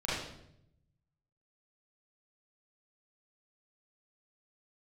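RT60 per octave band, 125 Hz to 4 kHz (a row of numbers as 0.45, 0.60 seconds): 1.5, 1.0, 0.85, 0.70, 0.65, 0.65 seconds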